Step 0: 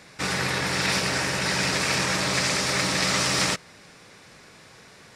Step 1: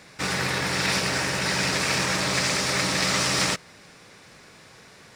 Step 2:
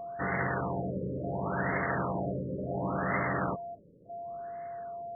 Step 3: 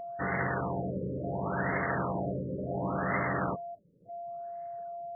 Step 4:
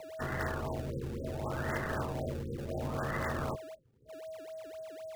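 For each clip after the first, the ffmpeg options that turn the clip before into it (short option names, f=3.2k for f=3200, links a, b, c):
-af "acrusher=bits=7:mode=log:mix=0:aa=0.000001"
-af "aeval=exprs='val(0)+0.02*sin(2*PI*690*n/s)':c=same,afftfilt=real='re*lt(b*sr/1024,570*pow(2200/570,0.5+0.5*sin(2*PI*0.7*pts/sr)))':imag='im*lt(b*sr/1024,570*pow(2200/570,0.5+0.5*sin(2*PI*0.7*pts/sr)))':win_size=1024:overlap=0.75,volume=-3.5dB"
-af "afftdn=nr=13:nf=-42,acompressor=mode=upward:threshold=-46dB:ratio=2.5"
-filter_complex "[0:a]asplit=2[a][b];[b]acrusher=samples=24:mix=1:aa=0.000001:lfo=1:lforange=38.4:lforate=3.9,volume=-5.5dB[c];[a][c]amix=inputs=2:normalize=0,afreqshift=-50,volume=-6.5dB"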